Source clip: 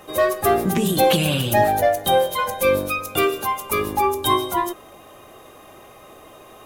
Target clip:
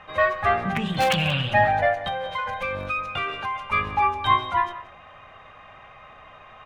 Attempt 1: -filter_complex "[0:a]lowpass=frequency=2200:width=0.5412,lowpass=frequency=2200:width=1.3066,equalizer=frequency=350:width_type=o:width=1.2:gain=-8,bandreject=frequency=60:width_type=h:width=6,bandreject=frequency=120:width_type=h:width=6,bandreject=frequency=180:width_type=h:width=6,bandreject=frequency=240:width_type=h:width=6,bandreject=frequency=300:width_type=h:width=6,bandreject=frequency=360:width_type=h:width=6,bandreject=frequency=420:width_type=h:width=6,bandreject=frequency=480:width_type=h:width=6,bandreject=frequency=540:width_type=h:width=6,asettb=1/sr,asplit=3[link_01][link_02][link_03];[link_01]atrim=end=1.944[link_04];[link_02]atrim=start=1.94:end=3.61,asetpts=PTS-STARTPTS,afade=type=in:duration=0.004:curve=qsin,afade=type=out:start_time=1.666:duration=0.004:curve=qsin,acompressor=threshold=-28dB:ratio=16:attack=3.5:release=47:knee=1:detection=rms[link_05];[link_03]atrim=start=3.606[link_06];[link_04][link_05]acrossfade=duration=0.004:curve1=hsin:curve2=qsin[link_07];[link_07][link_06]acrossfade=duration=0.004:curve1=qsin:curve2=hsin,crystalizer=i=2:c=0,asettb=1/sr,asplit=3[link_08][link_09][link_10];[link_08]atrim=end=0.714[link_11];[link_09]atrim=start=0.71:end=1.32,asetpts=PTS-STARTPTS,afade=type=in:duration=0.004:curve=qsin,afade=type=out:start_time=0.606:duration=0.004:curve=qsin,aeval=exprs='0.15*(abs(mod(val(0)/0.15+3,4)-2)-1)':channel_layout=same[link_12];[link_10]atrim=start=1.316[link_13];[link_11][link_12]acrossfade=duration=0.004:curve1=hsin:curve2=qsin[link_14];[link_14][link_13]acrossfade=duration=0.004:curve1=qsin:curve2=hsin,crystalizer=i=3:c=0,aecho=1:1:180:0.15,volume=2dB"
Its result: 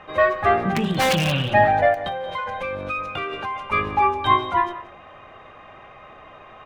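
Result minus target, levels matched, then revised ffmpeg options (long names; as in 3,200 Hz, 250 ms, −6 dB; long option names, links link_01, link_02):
250 Hz band +2.5 dB
-filter_complex "[0:a]lowpass=frequency=2200:width=0.5412,lowpass=frequency=2200:width=1.3066,equalizer=frequency=350:width_type=o:width=1.2:gain=-19,bandreject=frequency=60:width_type=h:width=6,bandreject=frequency=120:width_type=h:width=6,bandreject=frequency=180:width_type=h:width=6,bandreject=frequency=240:width_type=h:width=6,bandreject=frequency=300:width_type=h:width=6,bandreject=frequency=360:width_type=h:width=6,bandreject=frequency=420:width_type=h:width=6,bandreject=frequency=480:width_type=h:width=6,bandreject=frequency=540:width_type=h:width=6,asettb=1/sr,asplit=3[link_01][link_02][link_03];[link_01]atrim=end=1.944[link_04];[link_02]atrim=start=1.94:end=3.61,asetpts=PTS-STARTPTS,afade=type=in:duration=0.004:curve=qsin,afade=type=out:start_time=1.666:duration=0.004:curve=qsin,acompressor=threshold=-28dB:ratio=16:attack=3.5:release=47:knee=1:detection=rms[link_05];[link_03]atrim=start=3.606[link_06];[link_04][link_05]acrossfade=duration=0.004:curve1=hsin:curve2=qsin[link_07];[link_07][link_06]acrossfade=duration=0.004:curve1=qsin:curve2=hsin,crystalizer=i=2:c=0,asettb=1/sr,asplit=3[link_08][link_09][link_10];[link_08]atrim=end=0.714[link_11];[link_09]atrim=start=0.71:end=1.32,asetpts=PTS-STARTPTS,afade=type=in:duration=0.004:curve=qsin,afade=type=out:start_time=0.606:duration=0.004:curve=qsin,aeval=exprs='0.15*(abs(mod(val(0)/0.15+3,4)-2)-1)':channel_layout=same[link_12];[link_10]atrim=start=1.316[link_13];[link_11][link_12]acrossfade=duration=0.004:curve1=hsin:curve2=qsin[link_14];[link_14][link_13]acrossfade=duration=0.004:curve1=qsin:curve2=hsin,crystalizer=i=3:c=0,aecho=1:1:180:0.15,volume=2dB"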